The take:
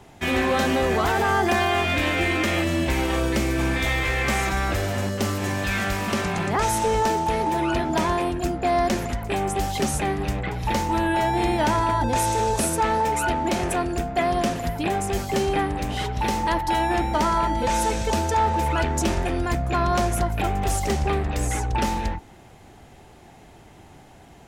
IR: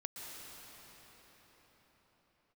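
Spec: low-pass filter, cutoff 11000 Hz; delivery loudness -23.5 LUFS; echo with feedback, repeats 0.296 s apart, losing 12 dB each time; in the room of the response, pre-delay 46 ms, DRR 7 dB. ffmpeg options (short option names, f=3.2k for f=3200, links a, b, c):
-filter_complex "[0:a]lowpass=11k,aecho=1:1:296|592|888:0.251|0.0628|0.0157,asplit=2[a][b];[1:a]atrim=start_sample=2205,adelay=46[c];[b][c]afir=irnorm=-1:irlink=0,volume=-6dB[d];[a][d]amix=inputs=2:normalize=0,volume=-1dB"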